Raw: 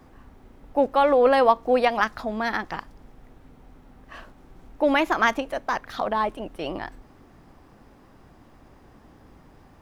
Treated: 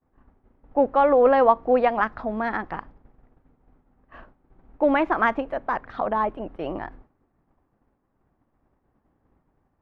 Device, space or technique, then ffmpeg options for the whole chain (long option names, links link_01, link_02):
hearing-loss simulation: -af "lowpass=1700,agate=range=-33dB:threshold=-39dB:ratio=3:detection=peak,volume=1dB"